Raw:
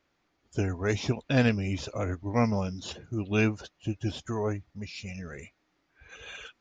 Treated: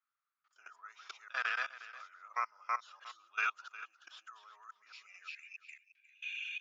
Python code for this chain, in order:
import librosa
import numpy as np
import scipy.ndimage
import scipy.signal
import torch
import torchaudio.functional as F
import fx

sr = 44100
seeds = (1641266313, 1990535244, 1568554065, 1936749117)

y = fx.reverse_delay(x, sr, ms=214, wet_db=-0.5)
y = scipy.signal.sosfilt(scipy.signal.butter(2, 6500.0, 'lowpass', fs=sr, output='sos'), y)
y = fx.level_steps(y, sr, step_db=23)
y = fx.ladder_highpass(y, sr, hz=fx.steps((0.0, 1200.0), (5.27, 2400.0)), resonance_pct=80)
y = y + 10.0 ** (-16.0 / 20.0) * np.pad(y, (int(358 * sr / 1000.0), 0))[:len(y)]
y = F.gain(torch.from_numpy(y), 5.5).numpy()